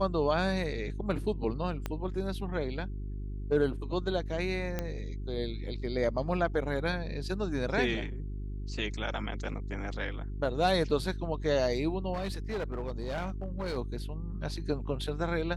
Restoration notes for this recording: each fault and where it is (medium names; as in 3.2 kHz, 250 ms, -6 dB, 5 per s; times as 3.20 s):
hum 50 Hz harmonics 8 -37 dBFS
1.86 s: pop -19 dBFS
4.79 s: pop -18 dBFS
12.13–13.78 s: clipped -30 dBFS